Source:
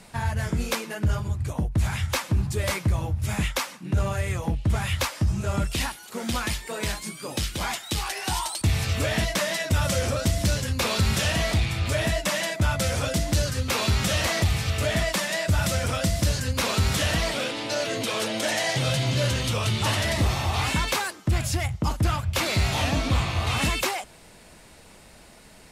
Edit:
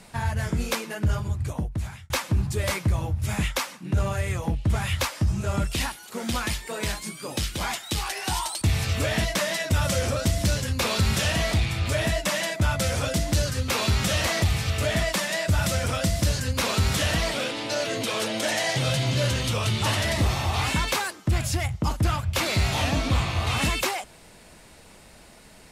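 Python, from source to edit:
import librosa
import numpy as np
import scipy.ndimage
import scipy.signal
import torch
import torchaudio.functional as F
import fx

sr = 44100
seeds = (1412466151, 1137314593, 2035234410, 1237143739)

y = fx.edit(x, sr, fx.fade_out_span(start_s=1.47, length_s=0.63), tone=tone)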